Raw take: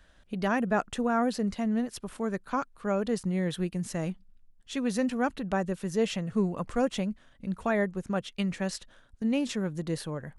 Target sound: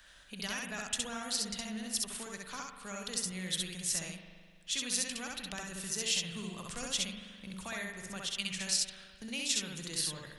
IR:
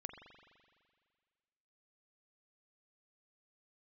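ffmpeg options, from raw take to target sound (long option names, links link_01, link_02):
-filter_complex "[0:a]tiltshelf=frequency=970:gain=-9,acrossover=split=140|3000[link_01][link_02][link_03];[link_02]acompressor=threshold=-53dB:ratio=2.5[link_04];[link_01][link_04][link_03]amix=inputs=3:normalize=0,asplit=2[link_05][link_06];[1:a]atrim=start_sample=2205,adelay=65[link_07];[link_06][link_07]afir=irnorm=-1:irlink=0,volume=3.5dB[link_08];[link_05][link_08]amix=inputs=2:normalize=0"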